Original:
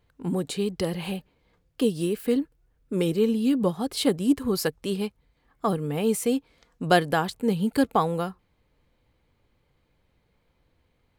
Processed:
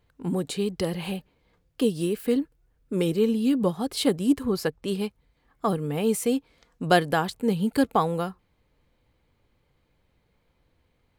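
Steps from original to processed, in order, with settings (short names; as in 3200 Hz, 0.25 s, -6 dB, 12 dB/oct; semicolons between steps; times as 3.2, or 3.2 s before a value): 4.45–4.88 bell 15000 Hz -8.5 dB 2 oct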